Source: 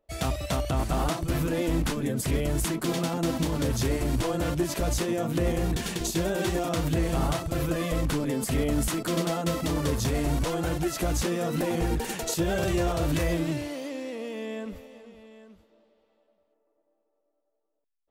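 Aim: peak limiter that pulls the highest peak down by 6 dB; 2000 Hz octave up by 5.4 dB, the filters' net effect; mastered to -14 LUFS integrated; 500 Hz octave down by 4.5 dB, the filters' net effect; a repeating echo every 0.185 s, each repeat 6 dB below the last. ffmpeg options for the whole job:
-af "equalizer=f=500:t=o:g=-6.5,equalizer=f=2k:t=o:g=7,alimiter=limit=-21dB:level=0:latency=1,aecho=1:1:185|370|555|740|925|1110:0.501|0.251|0.125|0.0626|0.0313|0.0157,volume=15.5dB"

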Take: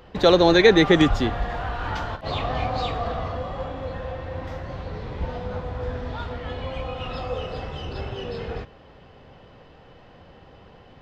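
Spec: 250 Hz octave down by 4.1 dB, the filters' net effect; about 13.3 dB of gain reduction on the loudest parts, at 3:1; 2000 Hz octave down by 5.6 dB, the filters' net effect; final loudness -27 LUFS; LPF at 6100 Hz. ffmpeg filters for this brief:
-af "lowpass=6.1k,equalizer=f=250:t=o:g=-6.5,equalizer=f=2k:t=o:g=-6.5,acompressor=threshold=-31dB:ratio=3,volume=8dB"

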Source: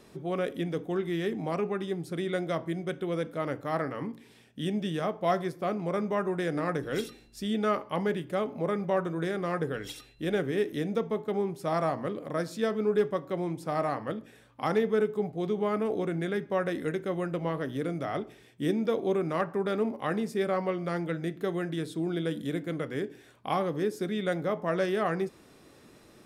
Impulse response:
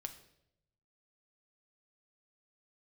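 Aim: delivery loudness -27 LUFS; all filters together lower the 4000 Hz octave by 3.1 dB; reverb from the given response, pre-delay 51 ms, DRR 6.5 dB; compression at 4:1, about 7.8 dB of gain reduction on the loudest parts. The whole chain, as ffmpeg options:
-filter_complex "[0:a]equalizer=f=4k:t=o:g=-4,acompressor=threshold=-31dB:ratio=4,asplit=2[a][b];[1:a]atrim=start_sample=2205,adelay=51[c];[b][c]afir=irnorm=-1:irlink=0,volume=-3.5dB[d];[a][d]amix=inputs=2:normalize=0,volume=7.5dB"

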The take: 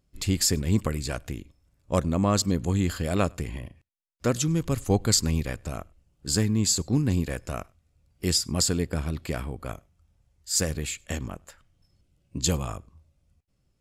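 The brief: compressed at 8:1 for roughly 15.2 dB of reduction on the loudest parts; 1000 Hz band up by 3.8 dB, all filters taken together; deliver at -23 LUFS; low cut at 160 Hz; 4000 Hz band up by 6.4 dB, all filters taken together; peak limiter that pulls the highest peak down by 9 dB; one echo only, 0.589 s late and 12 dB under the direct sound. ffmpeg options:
-af "highpass=160,equalizer=f=1k:t=o:g=4.5,equalizer=f=4k:t=o:g=8,acompressor=threshold=-32dB:ratio=8,alimiter=level_in=2.5dB:limit=-24dB:level=0:latency=1,volume=-2.5dB,aecho=1:1:589:0.251,volume=16.5dB"

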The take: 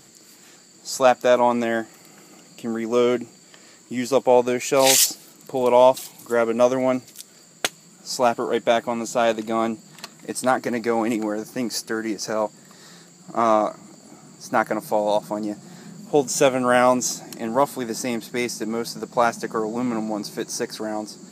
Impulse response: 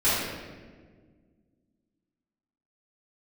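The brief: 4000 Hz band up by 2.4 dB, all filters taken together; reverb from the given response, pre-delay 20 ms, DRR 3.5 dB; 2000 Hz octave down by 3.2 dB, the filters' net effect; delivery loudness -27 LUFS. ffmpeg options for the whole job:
-filter_complex "[0:a]equalizer=f=2k:t=o:g=-5.5,equalizer=f=4k:t=o:g=4.5,asplit=2[a][b];[1:a]atrim=start_sample=2205,adelay=20[c];[b][c]afir=irnorm=-1:irlink=0,volume=-19dB[d];[a][d]amix=inputs=2:normalize=0,volume=-6.5dB"

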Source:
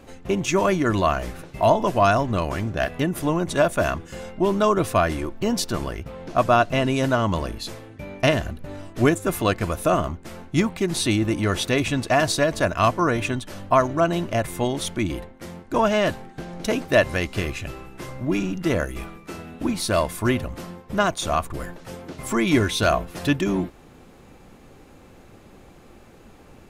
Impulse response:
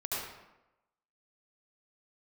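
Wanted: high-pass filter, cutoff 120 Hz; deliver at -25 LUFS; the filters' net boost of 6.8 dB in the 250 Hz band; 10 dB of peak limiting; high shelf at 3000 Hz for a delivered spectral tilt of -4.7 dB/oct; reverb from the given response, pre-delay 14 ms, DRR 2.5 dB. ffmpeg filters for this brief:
-filter_complex "[0:a]highpass=120,equalizer=f=250:t=o:g=9,highshelf=f=3k:g=7,alimiter=limit=-10dB:level=0:latency=1,asplit=2[a][b];[1:a]atrim=start_sample=2205,adelay=14[c];[b][c]afir=irnorm=-1:irlink=0,volume=-7.5dB[d];[a][d]amix=inputs=2:normalize=0,volume=-5dB"

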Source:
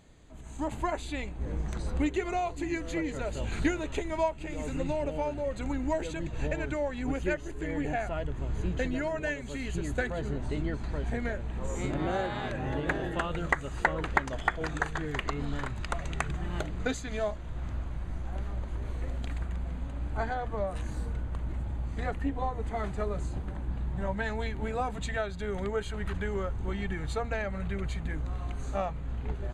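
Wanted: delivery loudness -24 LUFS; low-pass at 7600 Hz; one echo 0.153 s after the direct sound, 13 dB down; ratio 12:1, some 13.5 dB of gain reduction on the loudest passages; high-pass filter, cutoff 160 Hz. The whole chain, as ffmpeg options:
-af "highpass=160,lowpass=7.6k,acompressor=threshold=-37dB:ratio=12,aecho=1:1:153:0.224,volume=18dB"

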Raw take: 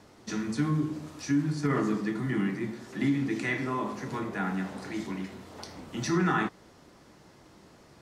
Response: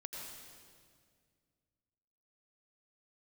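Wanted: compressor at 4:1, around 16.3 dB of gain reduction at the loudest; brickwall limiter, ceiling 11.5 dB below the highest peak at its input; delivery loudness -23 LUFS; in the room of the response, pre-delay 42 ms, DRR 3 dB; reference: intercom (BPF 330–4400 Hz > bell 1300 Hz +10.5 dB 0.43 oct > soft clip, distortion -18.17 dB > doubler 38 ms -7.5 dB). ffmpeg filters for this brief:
-filter_complex "[0:a]acompressor=threshold=-43dB:ratio=4,alimiter=level_in=15dB:limit=-24dB:level=0:latency=1,volume=-15dB,asplit=2[a][b];[1:a]atrim=start_sample=2205,adelay=42[c];[b][c]afir=irnorm=-1:irlink=0,volume=-1dB[d];[a][d]amix=inputs=2:normalize=0,highpass=330,lowpass=4.4k,equalizer=f=1.3k:t=o:w=0.43:g=10.5,asoftclip=threshold=-39dB,asplit=2[e][f];[f]adelay=38,volume=-7.5dB[g];[e][g]amix=inputs=2:normalize=0,volume=25dB"

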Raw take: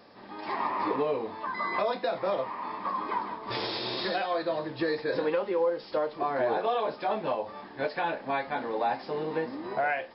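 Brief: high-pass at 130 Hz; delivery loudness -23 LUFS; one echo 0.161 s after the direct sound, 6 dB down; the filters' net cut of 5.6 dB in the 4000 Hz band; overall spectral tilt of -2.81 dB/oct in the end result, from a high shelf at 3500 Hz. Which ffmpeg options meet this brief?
-af "highpass=130,highshelf=f=3.5k:g=-4,equalizer=f=4k:t=o:g=-4,aecho=1:1:161:0.501,volume=7dB"

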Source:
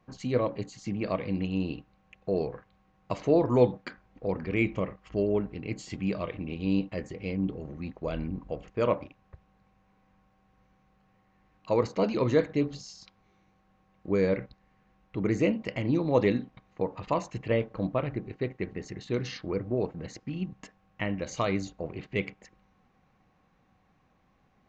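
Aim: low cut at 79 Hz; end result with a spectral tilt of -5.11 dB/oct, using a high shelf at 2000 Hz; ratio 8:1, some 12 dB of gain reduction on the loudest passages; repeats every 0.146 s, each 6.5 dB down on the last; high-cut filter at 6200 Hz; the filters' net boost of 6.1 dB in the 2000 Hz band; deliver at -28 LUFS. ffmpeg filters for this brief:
-af "highpass=79,lowpass=6.2k,highshelf=f=2k:g=5,equalizer=f=2k:t=o:g=4,acompressor=threshold=-29dB:ratio=8,aecho=1:1:146|292|438|584|730|876:0.473|0.222|0.105|0.0491|0.0231|0.0109,volume=7.5dB"

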